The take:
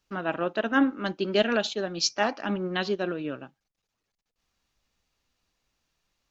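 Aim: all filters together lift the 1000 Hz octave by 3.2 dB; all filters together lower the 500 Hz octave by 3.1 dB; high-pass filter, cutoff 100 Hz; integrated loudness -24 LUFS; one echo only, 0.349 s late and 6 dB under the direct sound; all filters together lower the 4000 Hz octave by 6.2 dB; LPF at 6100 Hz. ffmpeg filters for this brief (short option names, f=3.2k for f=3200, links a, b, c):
-af "highpass=100,lowpass=6.1k,equalizer=f=500:t=o:g=-6.5,equalizer=f=1k:t=o:g=7,equalizer=f=4k:t=o:g=-8,aecho=1:1:349:0.501,volume=3.5dB"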